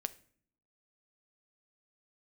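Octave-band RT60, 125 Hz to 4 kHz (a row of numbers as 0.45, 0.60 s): 0.85, 0.90, 0.60, 0.50, 0.50, 0.40 s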